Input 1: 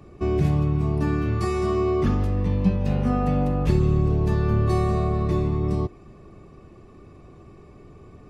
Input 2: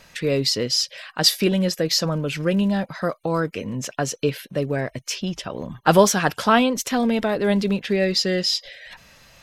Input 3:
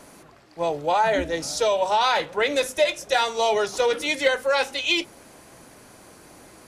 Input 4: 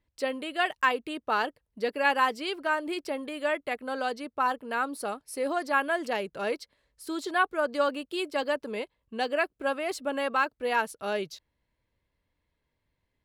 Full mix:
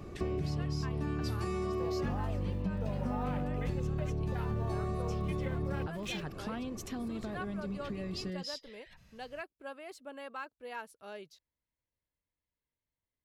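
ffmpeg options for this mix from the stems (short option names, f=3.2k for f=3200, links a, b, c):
-filter_complex "[0:a]acompressor=threshold=-26dB:ratio=2.5,volume=1dB[a];[1:a]bass=f=250:g=14,treble=f=4k:g=0,acompressor=threshold=-16dB:ratio=6,volume=-18dB[b];[2:a]afwtdn=0.0631,aeval=exprs='val(0)*gte(abs(val(0)),0.0158)':c=same,adelay=1200,volume=-15dB[c];[3:a]volume=-15.5dB[d];[a][b][c][d]amix=inputs=4:normalize=0,acompressor=threshold=-35dB:ratio=2.5"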